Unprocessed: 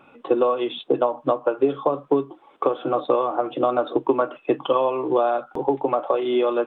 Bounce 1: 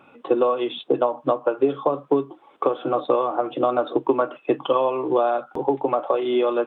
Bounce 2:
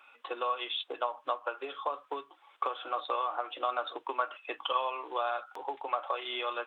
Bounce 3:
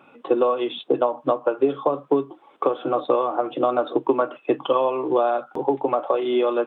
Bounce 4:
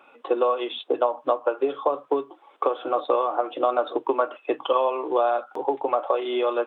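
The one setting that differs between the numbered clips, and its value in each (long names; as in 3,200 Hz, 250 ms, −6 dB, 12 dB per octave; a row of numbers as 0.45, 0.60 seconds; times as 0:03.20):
high-pass filter, corner frequency: 40, 1,400, 120, 450 Hertz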